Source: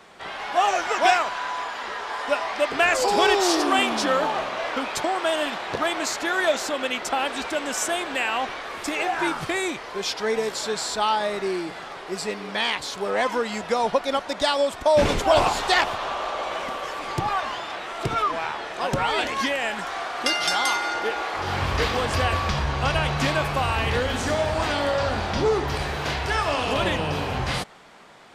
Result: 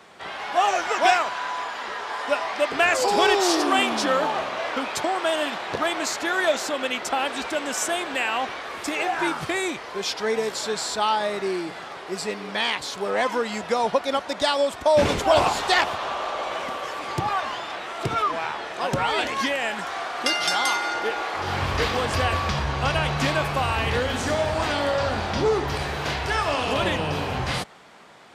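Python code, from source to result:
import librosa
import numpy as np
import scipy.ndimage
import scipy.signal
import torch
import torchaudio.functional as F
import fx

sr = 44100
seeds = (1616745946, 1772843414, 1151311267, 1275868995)

y = scipy.signal.sosfilt(scipy.signal.butter(2, 57.0, 'highpass', fs=sr, output='sos'), x)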